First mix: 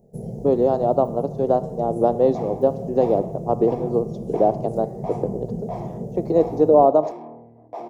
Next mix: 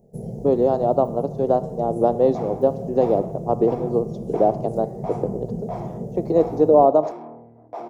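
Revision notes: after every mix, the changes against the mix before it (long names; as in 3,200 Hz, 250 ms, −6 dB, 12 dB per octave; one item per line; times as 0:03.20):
second sound: add parametric band 1,400 Hz +13.5 dB 0.23 octaves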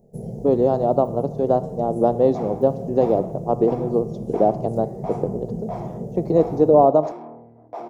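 speech: remove high-pass filter 220 Hz 12 dB per octave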